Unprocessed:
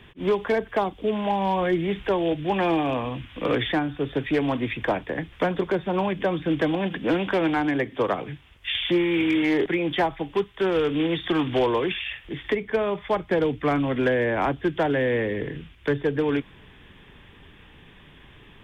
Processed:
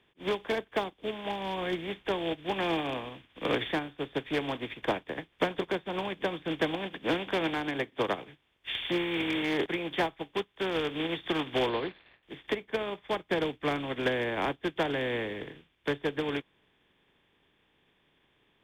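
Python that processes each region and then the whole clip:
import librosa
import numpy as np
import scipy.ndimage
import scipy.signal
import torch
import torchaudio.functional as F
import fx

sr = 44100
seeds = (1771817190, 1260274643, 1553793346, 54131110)

y = fx.chain(x, sr, fx.median_filter(points=15),
    fx.steep_lowpass(hz=4200.0, slope=96), at=(11.69, 12.23))
y = fx.bin_compress(y, sr, power=0.6)
y = fx.high_shelf(y, sr, hz=3400.0, db=11.0)
y = fx.upward_expand(y, sr, threshold_db=-34.0, expansion=2.5)
y = F.gain(torch.from_numpy(y), -7.0).numpy()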